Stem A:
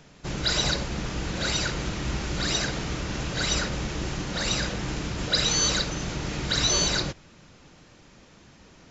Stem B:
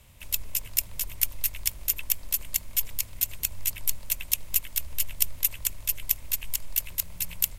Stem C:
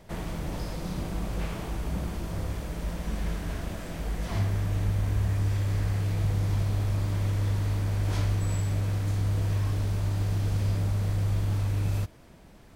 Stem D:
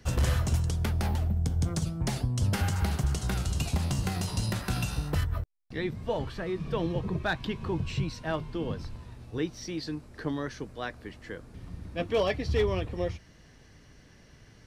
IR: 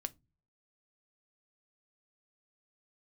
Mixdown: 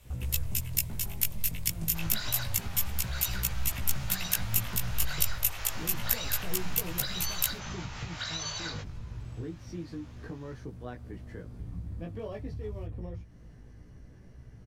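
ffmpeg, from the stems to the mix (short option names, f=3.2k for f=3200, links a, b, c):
-filter_complex "[0:a]highpass=f=710:w=0.5412,highpass=f=710:w=1.3066,highshelf=f=5.6k:g=-7,adelay=1700,volume=0dB[a];[1:a]volume=0.5dB[b];[2:a]alimiter=level_in=1dB:limit=-24dB:level=0:latency=1:release=46,volume=-1dB,adelay=800,volume=-19dB[c];[3:a]equalizer=f=3.9k:t=o:w=2.2:g=-10.5,acompressor=threshold=-41dB:ratio=2,adelay=50,volume=0.5dB[d];[a][d]amix=inputs=2:normalize=0,lowshelf=f=230:g=10,acompressor=threshold=-30dB:ratio=6,volume=0dB[e];[b][c][e]amix=inputs=3:normalize=0,flanger=delay=16:depth=2.7:speed=0.28"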